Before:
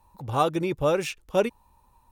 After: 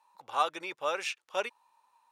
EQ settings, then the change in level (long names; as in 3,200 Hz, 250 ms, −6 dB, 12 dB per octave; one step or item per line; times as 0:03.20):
high-pass filter 1,000 Hz 12 dB per octave
high-frequency loss of the air 53 metres
0.0 dB